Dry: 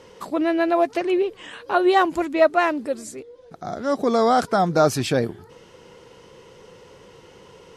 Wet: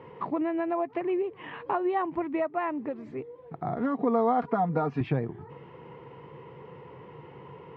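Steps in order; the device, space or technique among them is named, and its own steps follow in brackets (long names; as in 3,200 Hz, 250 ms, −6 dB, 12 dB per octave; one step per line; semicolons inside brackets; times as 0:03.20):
bass amplifier (downward compressor 4 to 1, threshold −28 dBFS, peak gain reduction 14 dB; loudspeaker in its box 90–2,200 Hz, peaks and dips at 140 Hz +10 dB, 200 Hz −3 dB, 560 Hz −6 dB, 960 Hz +4 dB, 1,500 Hz −8 dB)
0:03.76–0:05.01: comb filter 4.2 ms, depth 82%
level +1.5 dB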